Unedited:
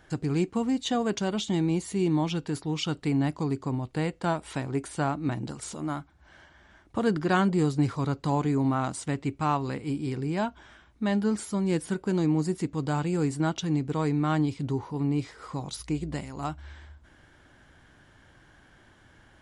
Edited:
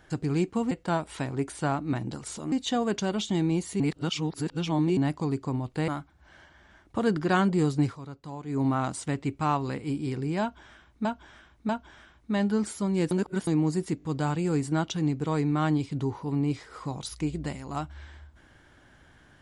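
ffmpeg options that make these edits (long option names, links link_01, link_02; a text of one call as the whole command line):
ffmpeg -i in.wav -filter_complex "[0:a]asplit=14[link_01][link_02][link_03][link_04][link_05][link_06][link_07][link_08][link_09][link_10][link_11][link_12][link_13][link_14];[link_01]atrim=end=0.712[link_15];[link_02]atrim=start=4.068:end=5.882[link_16];[link_03]atrim=start=0.708:end=1.992[link_17];[link_04]atrim=start=1.988:end=3.162,asetpts=PTS-STARTPTS,areverse[link_18];[link_05]atrim=start=3.158:end=4.072[link_19];[link_06]atrim=start=5.878:end=7.99,asetpts=PTS-STARTPTS,afade=type=out:start_time=1.952:duration=0.16:silence=0.223872[link_20];[link_07]atrim=start=7.99:end=8.46,asetpts=PTS-STARTPTS,volume=-13dB[link_21];[link_08]atrim=start=8.46:end=11.052,asetpts=PTS-STARTPTS,afade=type=in:duration=0.16:silence=0.223872[link_22];[link_09]atrim=start=10.408:end=11.052[link_23];[link_10]atrim=start=10.408:end=11.832[link_24];[link_11]atrim=start=11.828:end=12.192,asetpts=PTS-STARTPTS,areverse[link_25];[link_12]atrim=start=12.188:end=12.722[link_26];[link_13]atrim=start=12.698:end=12.722[link_27];[link_14]atrim=start=12.698[link_28];[link_15][link_16]acrossfade=duration=0.004:curve1=hsin:curve2=hsin[link_29];[link_29][link_17]acrossfade=duration=0.004:curve1=hsin:curve2=hsin[link_30];[link_30][link_18]acrossfade=duration=0.004:curve1=hsin:curve2=hsin[link_31];[link_31][link_19]acrossfade=duration=0.004:curve1=hsin:curve2=hsin[link_32];[link_20][link_21][link_22]concat=n=3:v=0:a=1[link_33];[link_32][link_33]acrossfade=duration=0.004:curve1=hsin:curve2=hsin[link_34];[link_34][link_23]acrossfade=duration=0.004:curve1=hsin:curve2=hsin[link_35];[link_35][link_24]acrossfade=duration=0.004:curve1=hsin:curve2=hsin[link_36];[link_36][link_25]acrossfade=duration=0.004:curve1=hsin:curve2=hsin[link_37];[link_37][link_26]acrossfade=duration=0.004:curve1=hsin:curve2=hsin[link_38];[link_38][link_27]acrossfade=duration=0.004:curve1=hsin:curve2=hsin[link_39];[link_39][link_28]acrossfade=duration=0.004:curve1=hsin:curve2=hsin" out.wav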